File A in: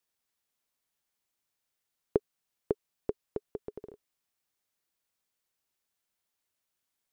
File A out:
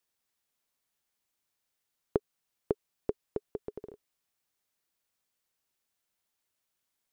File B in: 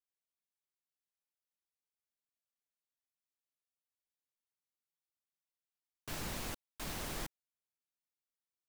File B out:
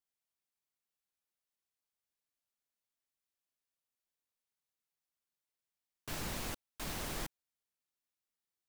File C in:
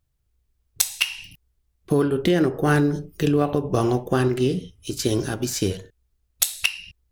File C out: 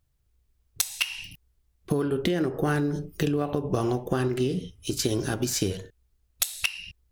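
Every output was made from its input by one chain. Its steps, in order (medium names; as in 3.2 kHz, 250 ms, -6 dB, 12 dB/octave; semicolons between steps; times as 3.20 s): compression, threshold -23 dBFS; trim +1 dB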